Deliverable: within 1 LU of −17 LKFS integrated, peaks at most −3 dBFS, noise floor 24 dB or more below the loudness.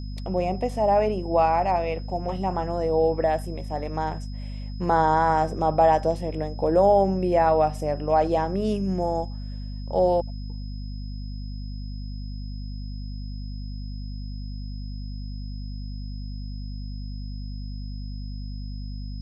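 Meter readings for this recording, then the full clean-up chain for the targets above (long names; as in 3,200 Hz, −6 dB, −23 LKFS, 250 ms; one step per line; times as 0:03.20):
mains hum 50 Hz; hum harmonics up to 250 Hz; level of the hum −31 dBFS; interfering tone 5,100 Hz; level of the tone −49 dBFS; integrated loudness −23.5 LKFS; sample peak −8.0 dBFS; target loudness −17.0 LKFS
→ mains-hum notches 50/100/150/200/250 Hz
notch filter 5,100 Hz, Q 30
level +6.5 dB
brickwall limiter −3 dBFS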